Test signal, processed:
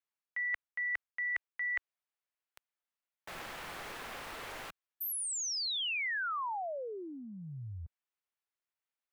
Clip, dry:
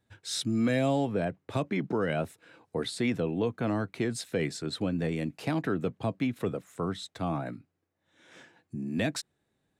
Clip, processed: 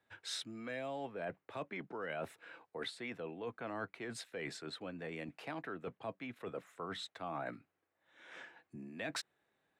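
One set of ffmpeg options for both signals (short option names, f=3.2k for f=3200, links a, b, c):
-filter_complex "[0:a]acrossover=split=160 3000:gain=0.141 1 0.224[a][b][c];[a][b][c]amix=inputs=3:normalize=0,areverse,acompressor=threshold=-37dB:ratio=12,areverse,equalizer=f=220:w=0.55:g=-12,volume=4.5dB"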